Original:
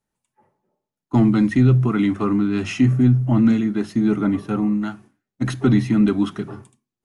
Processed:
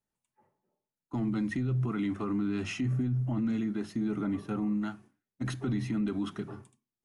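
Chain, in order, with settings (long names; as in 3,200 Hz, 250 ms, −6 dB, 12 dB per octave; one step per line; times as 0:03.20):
brickwall limiter −15.5 dBFS, peak gain reduction 9.5 dB
level −8.5 dB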